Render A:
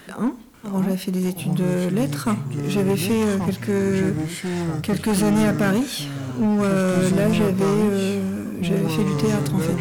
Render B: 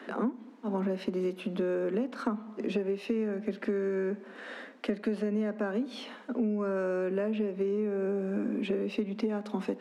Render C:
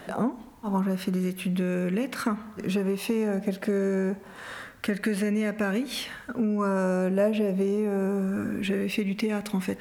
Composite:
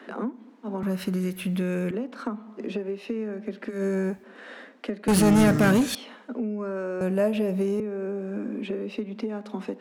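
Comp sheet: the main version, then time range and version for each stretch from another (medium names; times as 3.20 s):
B
0.83–1.91 s: from C
3.75–4.18 s: from C, crossfade 0.16 s
5.08–5.95 s: from A
7.01–7.80 s: from C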